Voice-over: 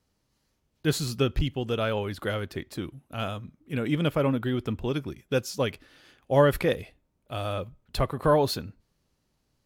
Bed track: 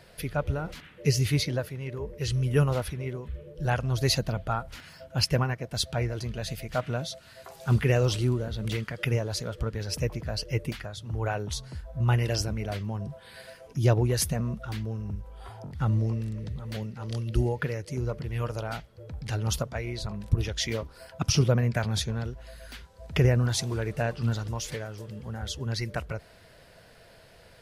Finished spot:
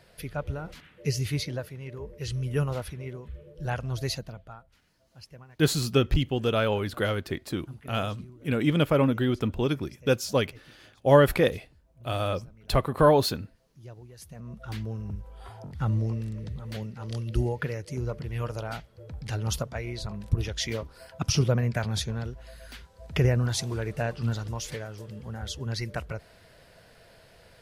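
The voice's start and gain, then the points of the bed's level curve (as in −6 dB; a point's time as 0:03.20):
4.75 s, +2.5 dB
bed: 0:03.99 −4 dB
0:04.84 −23.5 dB
0:14.14 −23.5 dB
0:14.72 −1 dB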